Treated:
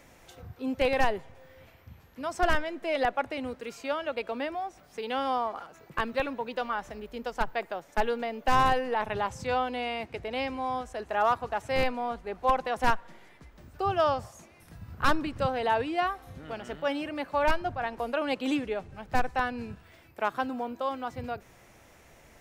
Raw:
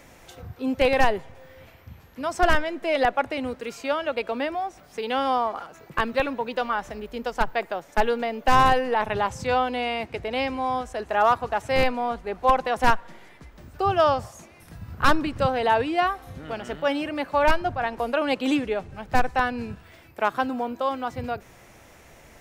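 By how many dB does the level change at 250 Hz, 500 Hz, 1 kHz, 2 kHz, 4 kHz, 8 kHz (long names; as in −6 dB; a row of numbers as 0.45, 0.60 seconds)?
−5.5, −5.5, −5.5, −5.5, −5.5, −5.5 decibels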